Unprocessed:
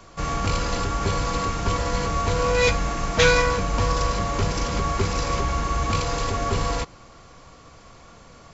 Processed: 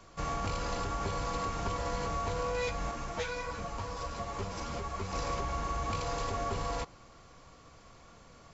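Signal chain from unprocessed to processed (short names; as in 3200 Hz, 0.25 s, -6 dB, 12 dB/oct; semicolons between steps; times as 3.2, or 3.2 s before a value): dynamic EQ 760 Hz, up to +5 dB, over -36 dBFS, Q 1.1; compressor 6:1, threshold -22 dBFS, peak gain reduction 11 dB; 2.91–5.13 ensemble effect; gain -8 dB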